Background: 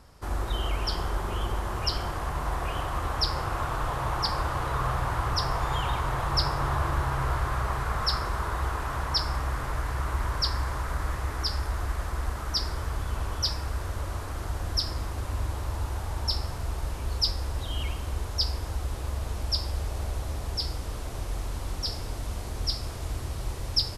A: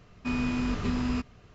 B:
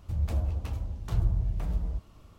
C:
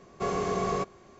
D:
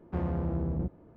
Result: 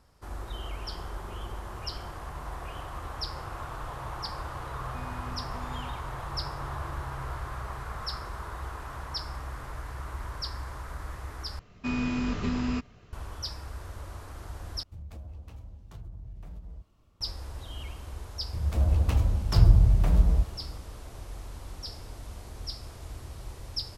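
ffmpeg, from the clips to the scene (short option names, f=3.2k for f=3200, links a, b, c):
-filter_complex "[1:a]asplit=2[a][b];[2:a]asplit=2[c][d];[0:a]volume=-8.5dB[e];[c]acompressor=threshold=-27dB:ratio=6:attack=3.2:release=140:knee=1:detection=peak[f];[d]dynaudnorm=f=170:g=5:m=12.5dB[g];[e]asplit=3[h][i][j];[h]atrim=end=11.594[k];[b]atrim=end=1.54,asetpts=PTS-STARTPTS,volume=-0.5dB[l];[i]atrim=start=13.126:end=14.834[m];[f]atrim=end=2.38,asetpts=PTS-STARTPTS,volume=-11dB[n];[j]atrim=start=17.206[o];[a]atrim=end=1.54,asetpts=PTS-STARTPTS,volume=-17dB,afade=t=in:d=0.004:c=hsin,afade=t=out:st=1.536:d=0.004:c=hsin,adelay=206829S[p];[g]atrim=end=2.38,asetpts=PTS-STARTPTS,volume=-3dB,afade=t=in:d=0.004:c=hsin,afade=t=out:st=2.376:d=0.004:c=hsin,adelay=813204S[q];[k][l]acrossfade=d=0.004:c1=hsin:c2=hsin[r];[r][m]acrossfade=d=0.004:c1=hsin:c2=hsin[s];[s][n]acrossfade=d=0.004:c1=hsin:c2=hsin[t];[t][o]acrossfade=d=0.004:c1=hsin:c2=hsin[u];[u][p][q]amix=inputs=3:normalize=0"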